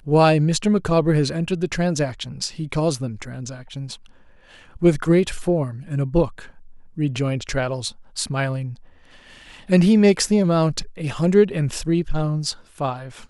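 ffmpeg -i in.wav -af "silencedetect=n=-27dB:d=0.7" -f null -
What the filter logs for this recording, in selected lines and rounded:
silence_start: 3.94
silence_end: 4.76 | silence_duration: 0.82
silence_start: 8.73
silence_end: 9.70 | silence_duration: 0.97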